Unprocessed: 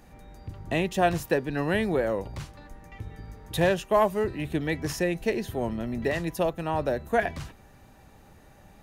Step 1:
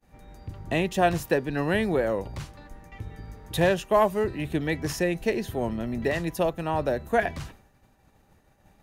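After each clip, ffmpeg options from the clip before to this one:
ffmpeg -i in.wav -af "agate=range=-33dB:threshold=-45dB:ratio=3:detection=peak,volume=1dB" out.wav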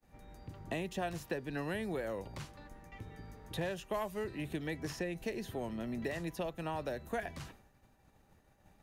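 ffmpeg -i in.wav -filter_complex "[0:a]acrossover=split=130|1800|5500[link_01][link_02][link_03][link_04];[link_01]acompressor=threshold=-46dB:ratio=4[link_05];[link_02]acompressor=threshold=-31dB:ratio=4[link_06];[link_03]acompressor=threshold=-42dB:ratio=4[link_07];[link_04]acompressor=threshold=-50dB:ratio=4[link_08];[link_05][link_06][link_07][link_08]amix=inputs=4:normalize=0,volume=-5.5dB" out.wav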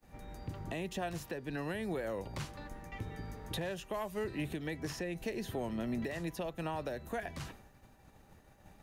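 ffmpeg -i in.wav -af "alimiter=level_in=10dB:limit=-24dB:level=0:latency=1:release=453,volume=-10dB,volume=6dB" out.wav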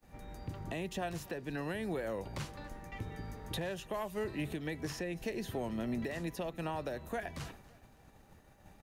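ffmpeg -i in.wav -af "aecho=1:1:281|562|843:0.0841|0.0362|0.0156" out.wav

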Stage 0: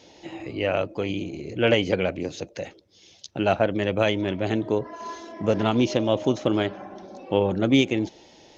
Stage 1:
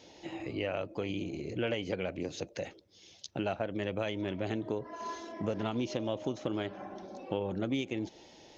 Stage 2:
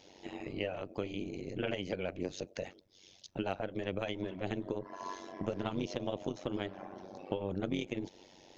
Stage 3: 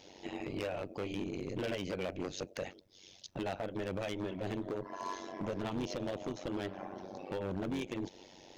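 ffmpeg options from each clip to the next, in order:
ffmpeg -i in.wav -af "acompressor=threshold=-27dB:ratio=4,volume=-4dB" out.wav
ffmpeg -i in.wav -af "tremolo=f=94:d=0.889,volume=1dB" out.wav
ffmpeg -i in.wav -af "asoftclip=type=hard:threshold=-34dB,volume=2.5dB" out.wav

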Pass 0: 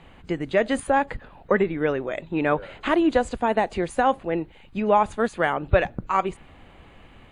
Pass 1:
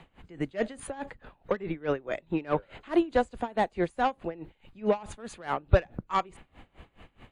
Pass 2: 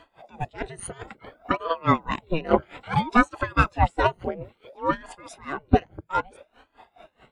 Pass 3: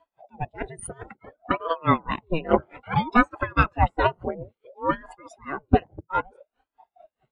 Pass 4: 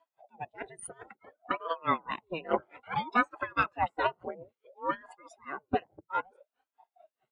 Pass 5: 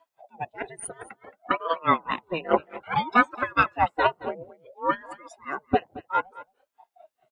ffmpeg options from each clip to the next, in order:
ffmpeg -i in.wav -filter_complex "[0:a]acrossover=split=370|4600[link_01][link_02][link_03];[link_02]asoftclip=type=tanh:threshold=-16.5dB[link_04];[link_01][link_04][link_03]amix=inputs=3:normalize=0,aeval=exprs='val(0)*pow(10,-23*(0.5-0.5*cos(2*PI*4.7*n/s))/20)':channel_layout=same" out.wav
ffmpeg -i in.wav -af "afftfilt=real='re*pow(10,19/40*sin(2*PI*(1.8*log(max(b,1)*sr/1024/100)/log(2)-(1.8)*(pts-256)/sr)))':imag='im*pow(10,19/40*sin(2*PI*(1.8*log(max(b,1)*sr/1024/100)/log(2)-(1.8)*(pts-256)/sr)))':win_size=1024:overlap=0.75,dynaudnorm=framelen=210:gausssize=11:maxgain=8dB,aeval=exprs='val(0)*sin(2*PI*460*n/s+460*0.8/0.59*sin(2*PI*0.59*n/s))':channel_layout=same" out.wav
ffmpeg -i in.wav -af "afftdn=noise_reduction=21:noise_floor=-41" out.wav
ffmpeg -i in.wav -af "highpass=frequency=520:poles=1,volume=-5.5dB" out.wav
ffmpeg -i in.wav -af "aecho=1:1:222:0.119,volume=7dB" out.wav

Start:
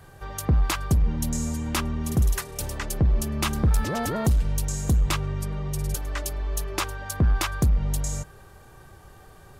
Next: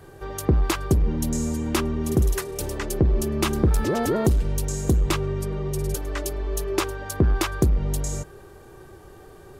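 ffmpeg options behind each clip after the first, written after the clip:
ffmpeg -i in.wav -af "equalizer=frequency=370:width_type=o:width=0.86:gain=11.5" out.wav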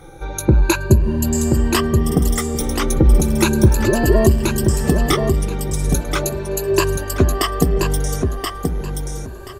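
ffmpeg -i in.wav -filter_complex "[0:a]afftfilt=real='re*pow(10,18/40*sin(2*PI*(1.4*log(max(b,1)*sr/1024/100)/log(2)-(0.36)*(pts-256)/sr)))':imag='im*pow(10,18/40*sin(2*PI*(1.4*log(max(b,1)*sr/1024/100)/log(2)-(0.36)*(pts-256)/sr)))':win_size=1024:overlap=0.75,asplit=2[link_01][link_02];[link_02]aecho=0:1:1029|2058|3087:0.562|0.118|0.0248[link_03];[link_01][link_03]amix=inputs=2:normalize=0,volume=3dB" out.wav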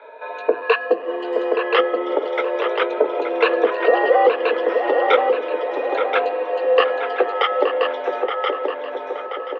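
ffmpeg -i in.wav -filter_complex "[0:a]highpass=frequency=310:width_type=q:width=0.5412,highpass=frequency=310:width_type=q:width=1.307,lowpass=frequency=3100:width_type=q:width=0.5176,lowpass=frequency=3100:width_type=q:width=0.7071,lowpass=frequency=3100:width_type=q:width=1.932,afreqshift=120,asplit=2[link_01][link_02];[link_02]adelay=873,lowpass=frequency=2100:poles=1,volume=-5.5dB,asplit=2[link_03][link_04];[link_04]adelay=873,lowpass=frequency=2100:poles=1,volume=0.45,asplit=2[link_05][link_06];[link_06]adelay=873,lowpass=frequency=2100:poles=1,volume=0.45,asplit=2[link_07][link_08];[link_08]adelay=873,lowpass=frequency=2100:poles=1,volume=0.45,asplit=2[link_09][link_10];[link_10]adelay=873,lowpass=frequency=2100:poles=1,volume=0.45[link_11];[link_01][link_03][link_05][link_07][link_09][link_11]amix=inputs=6:normalize=0,volume=2.5dB" out.wav

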